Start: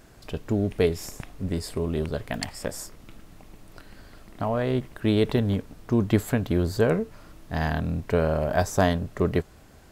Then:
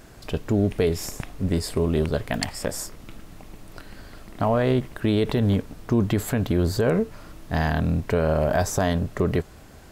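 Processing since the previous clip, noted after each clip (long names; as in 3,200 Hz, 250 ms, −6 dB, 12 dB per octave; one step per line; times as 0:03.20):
brickwall limiter −16.5 dBFS, peak gain reduction 9 dB
level +5 dB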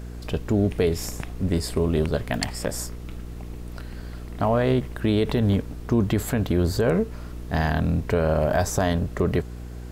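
hum with harmonics 60 Hz, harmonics 8, −36 dBFS −7 dB per octave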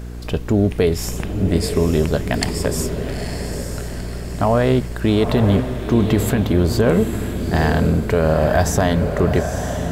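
feedback delay with all-pass diffusion 905 ms, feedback 46%, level −7 dB
level +5 dB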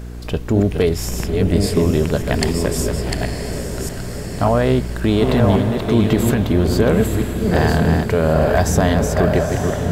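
delay that plays each chunk backwards 556 ms, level −4.5 dB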